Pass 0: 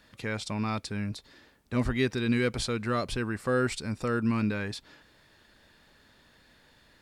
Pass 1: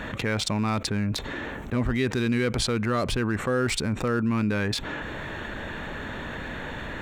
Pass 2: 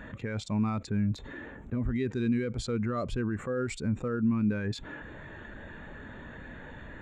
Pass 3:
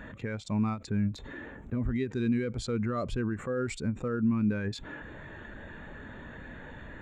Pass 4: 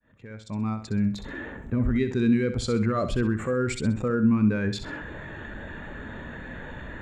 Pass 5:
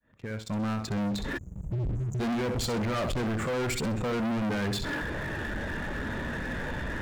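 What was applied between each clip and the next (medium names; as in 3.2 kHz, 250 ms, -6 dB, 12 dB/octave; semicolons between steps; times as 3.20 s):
local Wiener filter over 9 samples; level flattener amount 70%
peaking EQ 7.1 kHz +7.5 dB 0.28 oct; peak limiter -18.5 dBFS, peak gain reduction 6.5 dB; spectral contrast expander 1.5:1
endings held to a fixed fall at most 220 dB/s
fade-in on the opening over 1.38 s; on a send: flutter echo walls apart 11 m, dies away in 0.38 s; on the sum: trim +6 dB
spectral selection erased 1.37–2.20 s, 200–5900 Hz; waveshaping leveller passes 2; saturation -27.5 dBFS, distortion -7 dB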